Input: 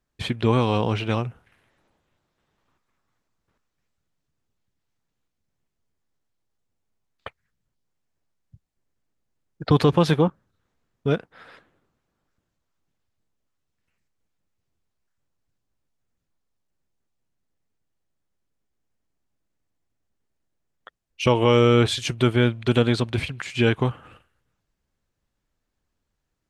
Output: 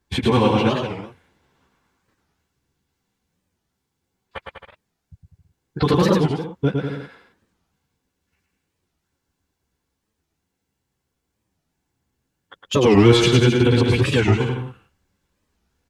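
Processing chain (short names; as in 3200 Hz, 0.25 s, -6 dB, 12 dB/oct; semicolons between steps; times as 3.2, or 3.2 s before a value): in parallel at 0 dB: compressor, threshold -28 dBFS, peak gain reduction 15 dB; on the sum: notch comb 620 Hz; time stretch by phase-locked vocoder 0.6×; chorus voices 4, 0.86 Hz, delay 13 ms, depth 2.7 ms; hard clip -10.5 dBFS, distortion -23 dB; limiter -14.5 dBFS, peak gain reduction 4 dB; on a send: bouncing-ball echo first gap 0.11 s, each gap 0.8×, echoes 5; on the sum: record warp 45 rpm, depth 250 cents; gain +6.5 dB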